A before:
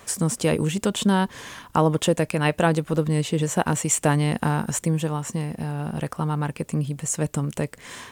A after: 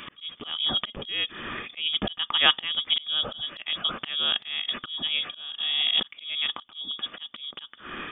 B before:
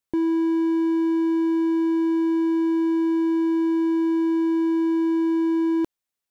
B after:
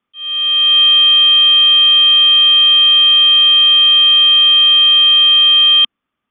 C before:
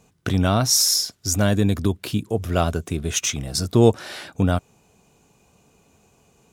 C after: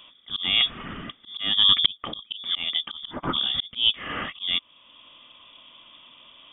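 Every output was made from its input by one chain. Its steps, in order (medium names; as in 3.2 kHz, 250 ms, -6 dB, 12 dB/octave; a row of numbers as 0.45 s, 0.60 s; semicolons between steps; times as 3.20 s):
frequency inversion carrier 3.5 kHz; small resonant body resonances 230/1200 Hz, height 12 dB, ringing for 25 ms; slow attack 665 ms; peak normalisation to -3 dBFS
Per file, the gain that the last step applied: +6.0 dB, +12.5 dB, +8.0 dB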